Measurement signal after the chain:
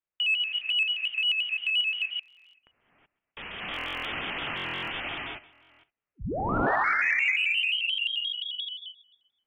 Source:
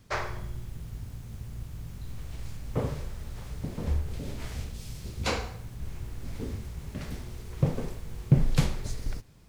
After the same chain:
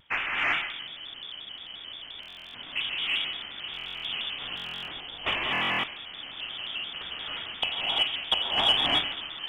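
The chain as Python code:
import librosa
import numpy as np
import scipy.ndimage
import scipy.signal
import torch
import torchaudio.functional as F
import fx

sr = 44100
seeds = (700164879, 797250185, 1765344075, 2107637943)

p1 = fx.rattle_buzz(x, sr, strikes_db=-17.0, level_db=-17.0)
p2 = fx.highpass(p1, sr, hz=470.0, slope=6)
p3 = p2 + fx.echo_feedback(p2, sr, ms=129, feedback_pct=54, wet_db=-19.5, dry=0)
p4 = fx.rev_gated(p3, sr, seeds[0], gate_ms=400, shape='rising', drr_db=-6.0)
p5 = fx.freq_invert(p4, sr, carrier_hz=3300)
p6 = 10.0 ** (-21.5 / 20.0) * np.tanh(p5 / 10.0 ** (-21.5 / 20.0))
p7 = p5 + (p6 * 10.0 ** (-6.5 / 20.0))
p8 = fx.buffer_glitch(p7, sr, at_s=(2.21, 3.72, 4.55, 5.51), block=1024, repeats=13)
y = fx.vibrato_shape(p8, sr, shape='square', rate_hz=5.7, depth_cents=100.0)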